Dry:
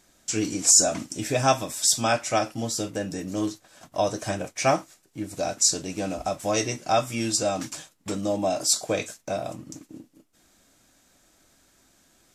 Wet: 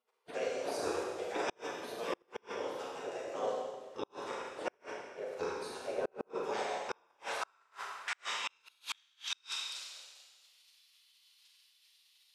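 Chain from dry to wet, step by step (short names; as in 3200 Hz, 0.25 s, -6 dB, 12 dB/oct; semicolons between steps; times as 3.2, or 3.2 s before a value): 5.87–6.3 RIAA curve playback; spectral gate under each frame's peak -20 dB weak; band-pass sweep 470 Hz -> 3900 Hz, 6.35–9.11; Schroeder reverb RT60 1.4 s, combs from 33 ms, DRR -2 dB; flipped gate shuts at -36 dBFS, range -38 dB; gain +13 dB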